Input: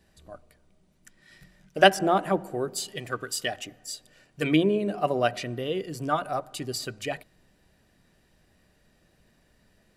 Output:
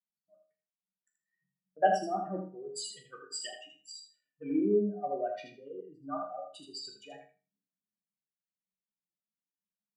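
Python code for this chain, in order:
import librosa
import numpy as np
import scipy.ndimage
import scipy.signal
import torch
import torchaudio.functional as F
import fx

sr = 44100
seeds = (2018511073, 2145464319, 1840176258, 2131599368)

y = fx.spec_expand(x, sr, power=2.6)
y = scipy.signal.sosfilt(scipy.signal.ellip(3, 1.0, 40, [170.0, 9900.0], 'bandpass', fs=sr, output='sos'), y)
y = fx.resonator_bank(y, sr, root=37, chord='sus4', decay_s=0.33)
y = fx.echo_feedback(y, sr, ms=80, feedback_pct=23, wet_db=-5)
y = fx.band_widen(y, sr, depth_pct=70)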